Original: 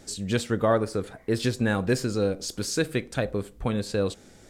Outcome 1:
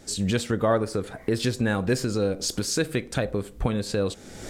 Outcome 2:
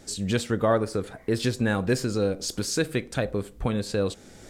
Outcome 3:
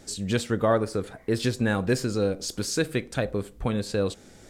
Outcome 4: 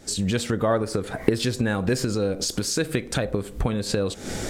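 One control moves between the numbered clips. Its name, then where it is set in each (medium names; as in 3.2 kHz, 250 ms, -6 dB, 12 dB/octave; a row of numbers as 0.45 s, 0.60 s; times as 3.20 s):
recorder AGC, rising by: 35 dB/s, 13 dB/s, 5 dB/s, 88 dB/s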